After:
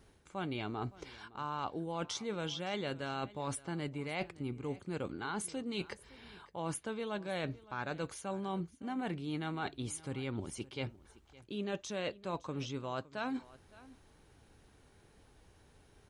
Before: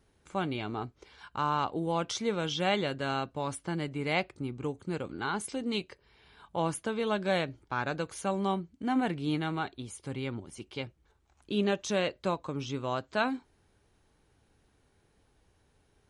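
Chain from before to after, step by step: reverse; compressor 6:1, threshold -41 dBFS, peak gain reduction 16.5 dB; reverse; echo 0.563 s -20 dB; gain +5 dB

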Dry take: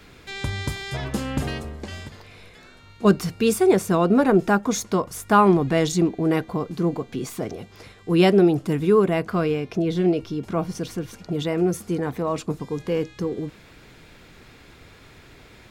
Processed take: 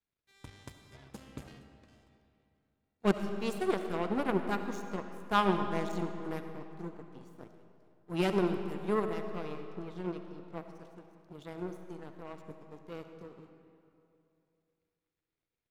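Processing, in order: power-law curve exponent 2; digital reverb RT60 2.7 s, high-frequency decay 0.7×, pre-delay 30 ms, DRR 6.5 dB; gain -6.5 dB

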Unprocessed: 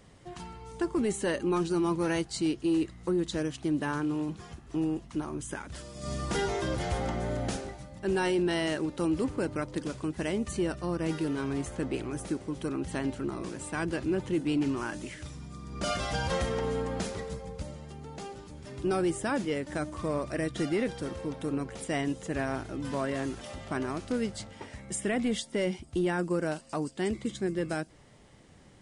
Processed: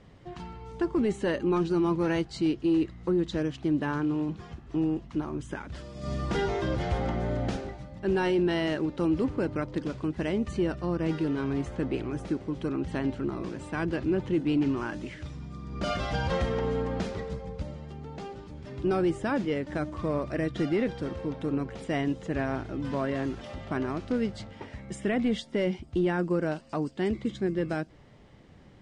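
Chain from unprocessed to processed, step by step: LPF 4300 Hz 12 dB/oct; low shelf 470 Hz +3.5 dB

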